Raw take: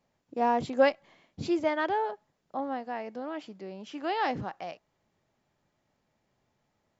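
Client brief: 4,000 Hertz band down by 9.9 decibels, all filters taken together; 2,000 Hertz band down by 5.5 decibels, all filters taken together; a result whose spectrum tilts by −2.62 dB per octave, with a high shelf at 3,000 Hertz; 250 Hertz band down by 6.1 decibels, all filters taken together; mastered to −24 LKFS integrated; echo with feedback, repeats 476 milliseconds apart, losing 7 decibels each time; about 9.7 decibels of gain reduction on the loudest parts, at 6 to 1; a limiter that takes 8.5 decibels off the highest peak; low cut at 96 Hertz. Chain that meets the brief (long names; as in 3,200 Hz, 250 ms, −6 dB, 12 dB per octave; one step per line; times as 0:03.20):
high-pass filter 96 Hz
parametric band 250 Hz −8 dB
parametric band 2,000 Hz −3 dB
high-shelf EQ 3,000 Hz −7.5 dB
parametric band 4,000 Hz −7 dB
downward compressor 6 to 1, threshold −29 dBFS
brickwall limiter −30.5 dBFS
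repeating echo 476 ms, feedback 45%, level −7 dB
level +16.5 dB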